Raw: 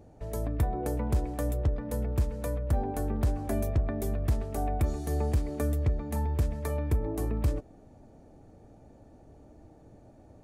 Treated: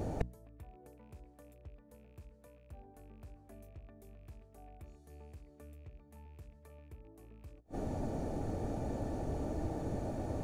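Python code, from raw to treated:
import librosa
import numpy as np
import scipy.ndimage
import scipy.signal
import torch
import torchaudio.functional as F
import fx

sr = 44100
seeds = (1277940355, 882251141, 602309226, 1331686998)

y = fx.rattle_buzz(x, sr, strikes_db=-29.0, level_db=-37.0)
y = fx.gate_flip(y, sr, shuts_db=-33.0, range_db=-41)
y = fx.hum_notches(y, sr, base_hz=60, count=5)
y = F.gain(torch.from_numpy(y), 16.5).numpy()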